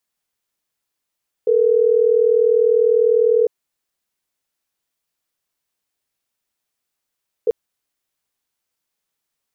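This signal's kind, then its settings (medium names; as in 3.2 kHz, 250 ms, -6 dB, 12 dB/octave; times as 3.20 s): call progress tone ringback tone, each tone -14.5 dBFS 6.04 s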